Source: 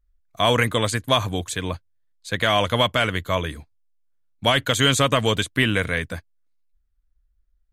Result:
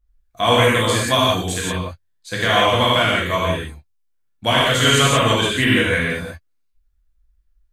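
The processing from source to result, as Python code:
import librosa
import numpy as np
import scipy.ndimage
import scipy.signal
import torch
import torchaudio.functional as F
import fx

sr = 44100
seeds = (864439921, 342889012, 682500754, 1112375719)

y = fx.high_shelf(x, sr, hz=9500.0, db=4.5, at=(0.83, 1.65))
y = fx.rev_gated(y, sr, seeds[0], gate_ms=200, shape='flat', drr_db=-6.5)
y = y * librosa.db_to_amplitude(-2.5)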